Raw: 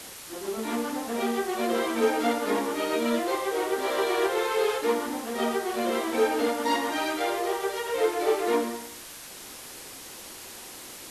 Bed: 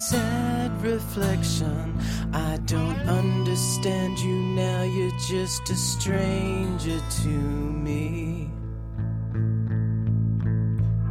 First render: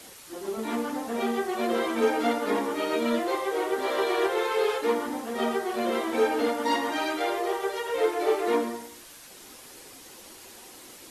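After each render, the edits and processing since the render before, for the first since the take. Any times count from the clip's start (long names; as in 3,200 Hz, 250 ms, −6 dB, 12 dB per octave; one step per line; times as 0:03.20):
broadband denoise 6 dB, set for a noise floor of −43 dBFS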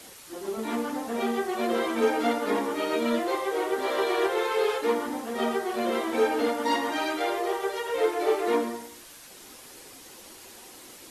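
no processing that can be heard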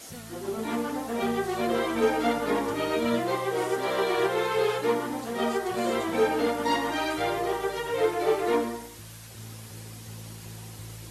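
mix in bed −19.5 dB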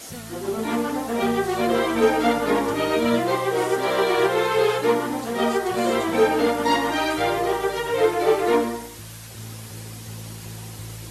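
level +5.5 dB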